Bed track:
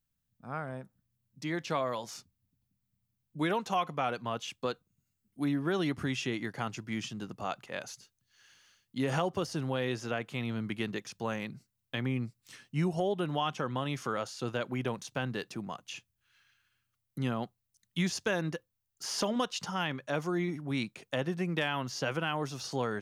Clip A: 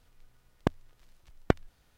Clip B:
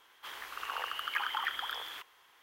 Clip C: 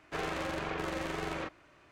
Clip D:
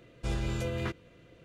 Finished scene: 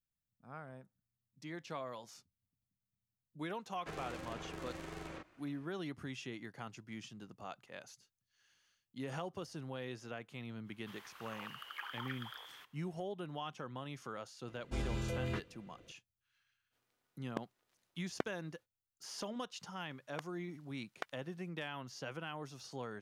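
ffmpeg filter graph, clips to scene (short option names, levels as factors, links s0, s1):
-filter_complex "[1:a]asplit=2[s0][s1];[0:a]volume=0.266[s2];[3:a]acrossover=split=320|5100[s3][s4][s5];[s4]acompressor=threshold=0.00447:ratio=3:attack=91:release=161:knee=2.83:detection=peak[s6];[s3][s6][s5]amix=inputs=3:normalize=0[s7];[s0]highpass=240[s8];[s1]highpass=1000[s9];[s7]atrim=end=1.91,asetpts=PTS-STARTPTS,volume=0.447,afade=t=in:d=0.004:c=hsin,afade=t=out:st=1.906:d=0.004:c=hsin,adelay=3740[s10];[2:a]atrim=end=2.42,asetpts=PTS-STARTPTS,volume=0.266,afade=t=in:d=0.05,afade=t=out:st=2.37:d=0.05,adelay=10630[s11];[4:a]atrim=end=1.44,asetpts=PTS-STARTPTS,volume=0.531,afade=t=in:d=0.004:c=hsin,afade=t=out:st=1.436:d=0.004:c=hsin,adelay=14480[s12];[s8]atrim=end=1.97,asetpts=PTS-STARTPTS,volume=0.266,afade=t=in:d=0.05,afade=t=out:st=1.92:d=0.05,adelay=16700[s13];[s9]atrim=end=1.97,asetpts=PTS-STARTPTS,volume=0.398,afade=t=in:d=0.004:c=hsin,afade=t=out:st=1.966:d=0.004:c=hsin,adelay=19520[s14];[s2][s10][s11][s12][s13][s14]amix=inputs=6:normalize=0"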